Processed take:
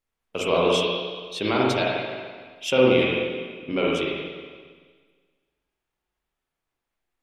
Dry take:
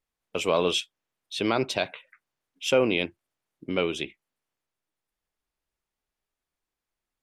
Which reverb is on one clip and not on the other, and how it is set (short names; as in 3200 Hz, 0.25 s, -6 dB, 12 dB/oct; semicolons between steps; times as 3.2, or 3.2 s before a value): spring tank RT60 1.6 s, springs 39/47/58 ms, chirp 60 ms, DRR -4.5 dB; gain -1 dB